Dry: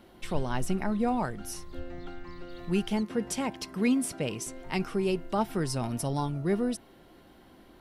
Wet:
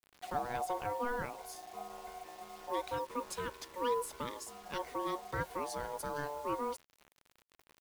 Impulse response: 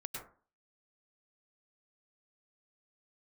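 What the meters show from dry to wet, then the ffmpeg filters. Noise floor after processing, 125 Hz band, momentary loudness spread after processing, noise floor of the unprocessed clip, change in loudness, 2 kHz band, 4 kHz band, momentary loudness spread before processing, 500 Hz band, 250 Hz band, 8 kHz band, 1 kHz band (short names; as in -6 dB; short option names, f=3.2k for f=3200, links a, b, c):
-73 dBFS, -16.0 dB, 10 LU, -56 dBFS, -8.5 dB, -4.5 dB, -7.5 dB, 14 LU, -6.0 dB, -17.0 dB, -9.0 dB, -1.0 dB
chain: -af "aeval=exprs='val(0)*sin(2*PI*730*n/s)':c=same,adynamicequalizer=threshold=0.00251:dfrequency=460:dqfactor=6.4:tfrequency=460:tqfactor=6.4:attack=5:release=100:ratio=0.375:range=1.5:mode=boostabove:tftype=bell,acrusher=bits=7:mix=0:aa=0.000001,volume=-6.5dB"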